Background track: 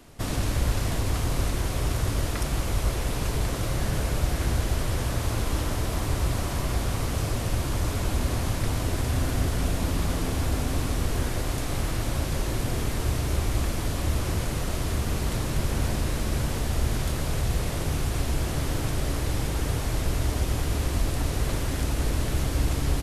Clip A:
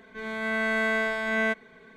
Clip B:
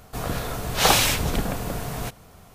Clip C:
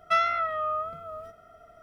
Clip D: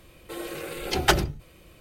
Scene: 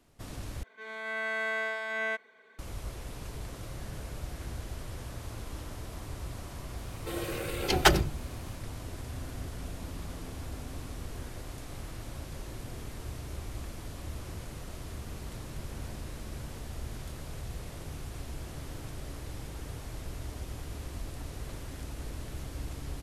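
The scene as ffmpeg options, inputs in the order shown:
-filter_complex "[0:a]volume=-14dB[a];[1:a]highpass=470[b];[a]asplit=2[c][d];[c]atrim=end=0.634[e];[b]atrim=end=1.96,asetpts=PTS-STARTPTS,volume=-5.5dB[f];[d]atrim=start=2.586[g];[4:a]atrim=end=1.8,asetpts=PTS-STARTPTS,volume=-1dB,afade=t=in:d=0.004:c=hsin,afade=t=out:st=1.796:d=0.004:c=hsin,adelay=6770[h];[e][f]acrossfade=d=0.004:c1=hsin:c2=hsin[i];[i][g]acrossfade=d=0.004:c1=hsin:c2=hsin[j];[j][h]amix=inputs=2:normalize=0"

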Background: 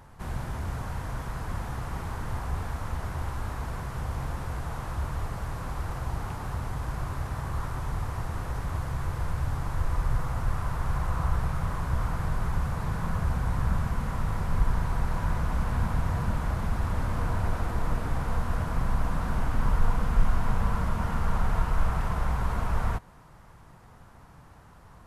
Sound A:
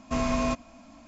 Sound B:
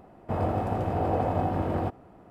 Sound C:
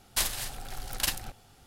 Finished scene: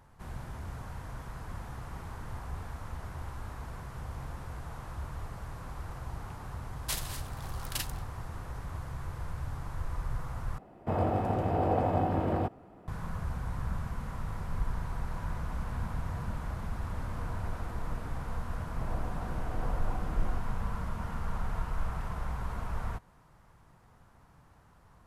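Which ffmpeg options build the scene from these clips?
-filter_complex "[2:a]asplit=2[a][b];[0:a]volume=-8dB,asplit=2[c][d];[c]atrim=end=10.584[e];[a]atrim=end=2.3,asetpts=PTS-STARTPTS,volume=-1.5dB[f];[d]atrim=start=12.876[g];[3:a]atrim=end=1.66,asetpts=PTS-STARTPTS,volume=-7dB,afade=t=in:d=0.004:c=hsin,afade=t=out:st=1.656:d=0.004:c=hsin,adelay=6720[h];[b]atrim=end=2.3,asetpts=PTS-STARTPTS,volume=-16dB,afade=t=in:d=0.004:c=hsin,afade=t=out:st=2.296:d=0.004:c=hsin,adelay=18500[i];[e][f]acrossfade=d=0.004:c1=hsin:c2=hsin[j];[j][g]acrossfade=d=0.004:c1=hsin:c2=hsin[k];[k][h][i]amix=inputs=3:normalize=0"

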